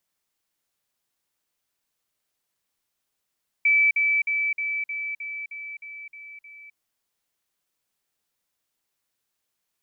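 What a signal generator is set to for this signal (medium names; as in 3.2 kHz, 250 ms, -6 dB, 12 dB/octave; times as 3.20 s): level ladder 2.31 kHz -15.5 dBFS, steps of -3 dB, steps 10, 0.26 s 0.05 s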